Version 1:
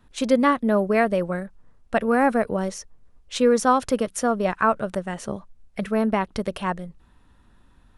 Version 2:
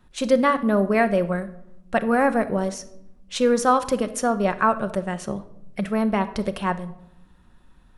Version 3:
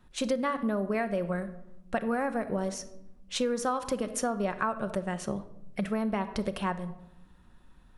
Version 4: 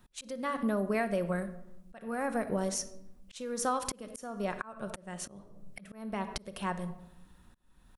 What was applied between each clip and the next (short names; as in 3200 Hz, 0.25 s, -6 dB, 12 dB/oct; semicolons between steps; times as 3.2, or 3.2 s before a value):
reverb RT60 0.80 s, pre-delay 5 ms, DRR 9 dB
compressor 5:1, threshold -23 dBFS, peak gain reduction 10.5 dB; gain -3 dB
high shelf 5800 Hz +11 dB; auto swell 0.399 s; gain -1 dB